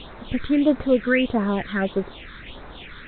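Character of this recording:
a quantiser's noise floor 6 bits, dither triangular
phaser sweep stages 6, 1.6 Hz, lowest notch 710–3,100 Hz
A-law companding

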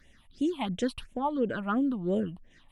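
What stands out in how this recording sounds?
phaser sweep stages 6, 2.9 Hz, lowest notch 400–1,300 Hz
MP3

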